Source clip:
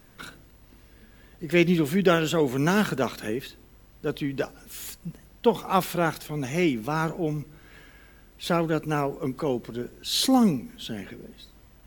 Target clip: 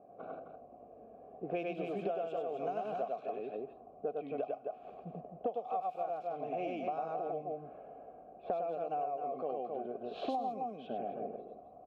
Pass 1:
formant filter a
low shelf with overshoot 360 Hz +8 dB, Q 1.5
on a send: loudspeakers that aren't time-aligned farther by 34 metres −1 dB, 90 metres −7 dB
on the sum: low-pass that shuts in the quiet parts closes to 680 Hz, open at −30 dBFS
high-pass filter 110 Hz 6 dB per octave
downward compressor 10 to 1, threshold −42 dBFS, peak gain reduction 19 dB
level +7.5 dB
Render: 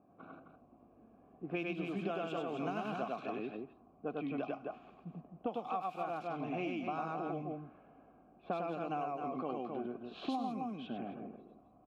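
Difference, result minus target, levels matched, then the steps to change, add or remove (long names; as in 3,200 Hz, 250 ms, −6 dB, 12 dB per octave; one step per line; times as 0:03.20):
500 Hz band −3.0 dB
add after high-pass filter: flat-topped bell 560 Hz +13.5 dB 1.1 octaves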